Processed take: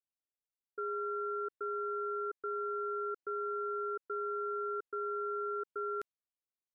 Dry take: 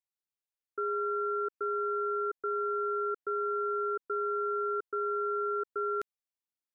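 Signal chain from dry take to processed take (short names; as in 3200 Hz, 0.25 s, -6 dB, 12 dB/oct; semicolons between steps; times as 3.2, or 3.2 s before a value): low-pass opened by the level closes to 660 Hz, open at -30 dBFS; gain -5 dB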